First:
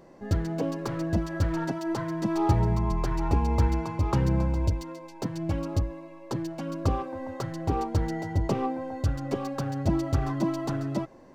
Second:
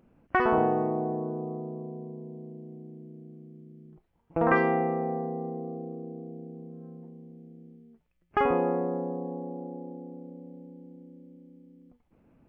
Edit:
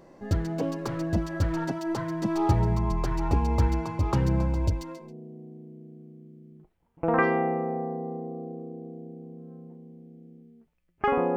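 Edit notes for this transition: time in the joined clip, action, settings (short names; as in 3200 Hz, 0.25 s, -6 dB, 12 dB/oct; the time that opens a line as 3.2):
first
5.04 switch to second from 2.37 s, crossfade 0.20 s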